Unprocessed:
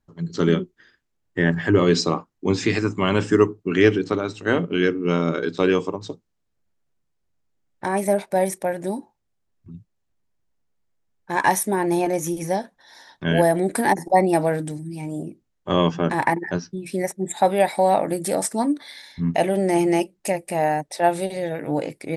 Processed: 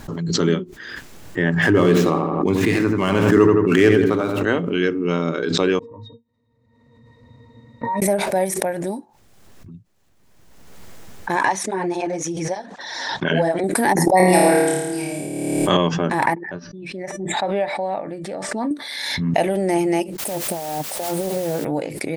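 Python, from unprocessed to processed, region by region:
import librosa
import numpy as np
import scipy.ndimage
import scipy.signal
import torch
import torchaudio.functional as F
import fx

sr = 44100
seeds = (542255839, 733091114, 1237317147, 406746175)

y = fx.chain(x, sr, fx.median_filter(points=9),
    fx.echo_filtered(ms=84, feedback_pct=42, hz=2400.0, wet_db=-7.5),
    fx.sustainer(db_per_s=26.0), at=(1.62, 4.43))
y = fx.chain(y, sr, fx.over_compress(threshold_db=-36.0, ratio=-1.0),
    fx.octave_resonator(note='A#', decay_s=0.12), at=(5.79, 8.02))
y = fx.chain(y, sr, fx.lowpass(hz=7100.0, slope=24),
    fx.flanger_cancel(hz=1.9, depth_ms=6.5), at=(11.45, 13.64))
y = fx.chain(y, sr, fx.high_shelf(hz=2100.0, db=9.0),
    fx.room_flutter(wall_m=4.7, rt60_s=1.3), at=(14.17, 15.77))
y = fx.chain(y, sr, fx.lowpass(hz=3200.0, slope=12),
    fx.comb_fb(f0_hz=590.0, decay_s=0.25, harmonics='all', damping=0.0, mix_pct=60), at=(16.35, 18.71))
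y = fx.band_shelf(y, sr, hz=3500.0, db=-15.0, octaves=2.3, at=(20.18, 21.63), fade=0.02)
y = fx.over_compress(y, sr, threshold_db=-28.0, ratio=-1.0, at=(20.18, 21.63), fade=0.02)
y = fx.dmg_noise_colour(y, sr, seeds[0], colour='white', level_db=-37.0, at=(20.18, 21.63), fade=0.02)
y = fx.low_shelf(y, sr, hz=73.0, db=-7.0)
y = fx.pre_swell(y, sr, db_per_s=31.0)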